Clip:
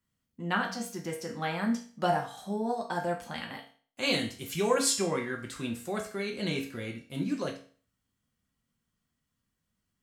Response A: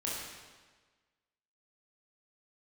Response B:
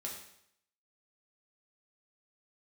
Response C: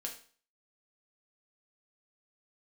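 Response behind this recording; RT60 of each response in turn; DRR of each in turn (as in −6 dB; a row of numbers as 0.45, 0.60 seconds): C; 1.4, 0.70, 0.45 seconds; −6.0, −2.5, 0.0 decibels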